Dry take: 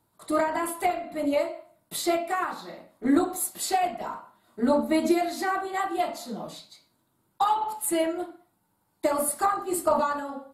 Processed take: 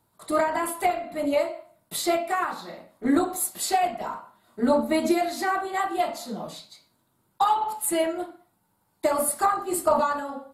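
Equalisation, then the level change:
parametric band 310 Hz −3.5 dB 0.36 octaves
+2.0 dB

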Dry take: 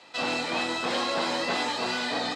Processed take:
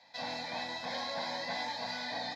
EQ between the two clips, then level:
phaser with its sweep stopped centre 1,900 Hz, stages 8
−6.5 dB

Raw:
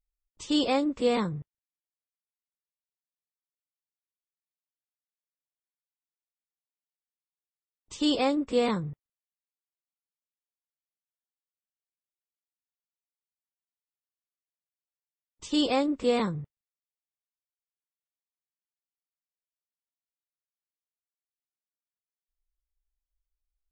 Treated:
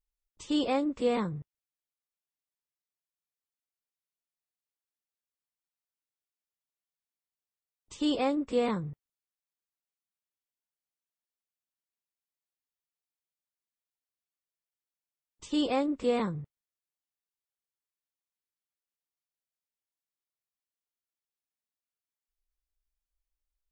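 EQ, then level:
dynamic equaliser 5,200 Hz, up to −7 dB, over −47 dBFS, Q 0.91
−2.5 dB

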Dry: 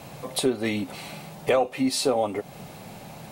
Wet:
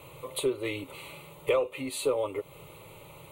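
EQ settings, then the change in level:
phaser with its sweep stopped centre 1,100 Hz, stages 8
−2.5 dB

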